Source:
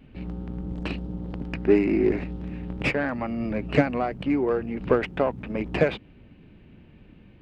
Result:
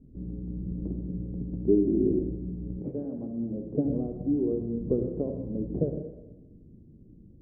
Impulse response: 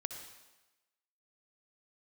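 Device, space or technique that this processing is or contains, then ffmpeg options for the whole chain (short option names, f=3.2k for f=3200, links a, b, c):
next room: -filter_complex "[0:a]lowpass=f=420:w=0.5412,lowpass=f=420:w=1.3066[a];[1:a]atrim=start_sample=2205[b];[a][b]afir=irnorm=-1:irlink=0,asettb=1/sr,asplit=3[c][d][e];[c]atrim=end=2.804[f];[d]atrim=start=2.8:end=3.85,asetpts=PTS-STARTPTS,afade=t=in:d=0.004:c=qsin,afade=t=out:st=1.046:d=0.004:c=qsin,highpass=f=250:p=1[g];[e]atrim=start=3.846[h];[f][g]acrossfade=d=0.004:c1=hsin:c2=qsin[i];[i][h]acrossfade=d=0.004:c1=qsin:c2=hsin"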